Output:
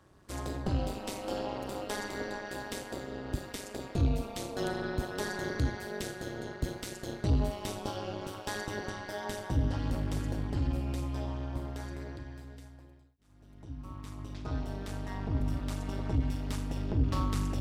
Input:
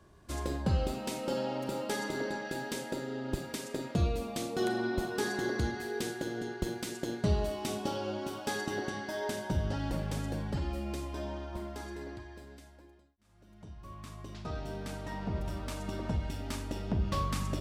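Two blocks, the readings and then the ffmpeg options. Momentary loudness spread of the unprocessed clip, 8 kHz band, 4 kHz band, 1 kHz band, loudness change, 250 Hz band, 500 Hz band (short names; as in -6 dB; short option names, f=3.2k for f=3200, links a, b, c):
11 LU, -1.5 dB, -1.5 dB, -1.5 dB, 0.0 dB, -0.5 dB, -2.5 dB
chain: -af "asubboost=boost=5:cutoff=80,highpass=54,tremolo=f=200:d=0.947,asoftclip=type=tanh:threshold=-20.5dB,volume=3dB"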